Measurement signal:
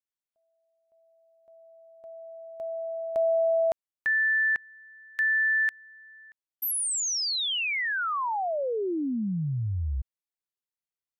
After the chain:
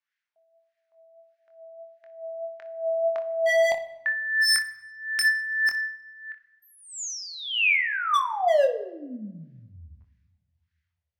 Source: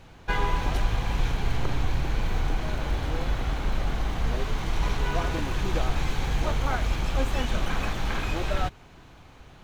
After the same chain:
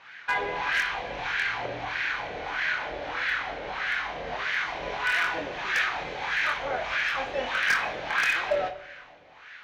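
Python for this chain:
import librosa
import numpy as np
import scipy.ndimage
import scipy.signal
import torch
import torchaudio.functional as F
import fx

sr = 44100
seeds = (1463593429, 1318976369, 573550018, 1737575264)

p1 = fx.band_shelf(x, sr, hz=3300.0, db=14.5, octaves=2.3)
p2 = fx.over_compress(p1, sr, threshold_db=-19.0, ratio=-0.5)
p3 = p1 + (p2 * librosa.db_to_amplitude(1.5))
p4 = fx.wah_lfo(p3, sr, hz=1.6, low_hz=540.0, high_hz=1700.0, q=3.6)
p5 = 10.0 ** (-17.5 / 20.0) * (np.abs((p4 / 10.0 ** (-17.5 / 20.0) + 3.0) % 4.0 - 2.0) - 1.0)
p6 = p5 + fx.room_early_taps(p5, sr, ms=(24, 60), db=(-6.5, -15.5), dry=0)
y = fx.room_shoebox(p6, sr, seeds[0], volume_m3=460.0, walls='mixed', distance_m=0.35)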